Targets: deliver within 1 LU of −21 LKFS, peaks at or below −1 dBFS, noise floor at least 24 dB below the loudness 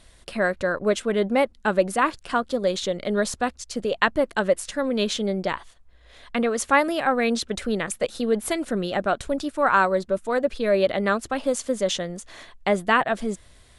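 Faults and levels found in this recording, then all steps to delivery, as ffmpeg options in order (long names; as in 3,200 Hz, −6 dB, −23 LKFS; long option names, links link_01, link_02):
integrated loudness −24.0 LKFS; sample peak −4.5 dBFS; target loudness −21.0 LKFS
→ -af "volume=3dB"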